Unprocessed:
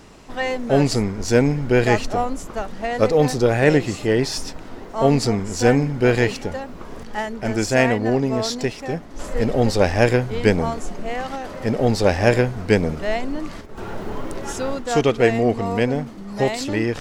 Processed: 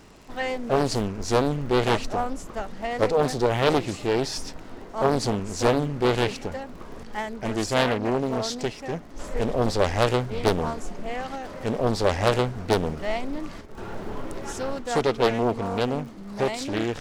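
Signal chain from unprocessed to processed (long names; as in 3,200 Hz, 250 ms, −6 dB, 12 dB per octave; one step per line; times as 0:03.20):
surface crackle 51 per second −35 dBFS
highs frequency-modulated by the lows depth 0.85 ms
level −4.5 dB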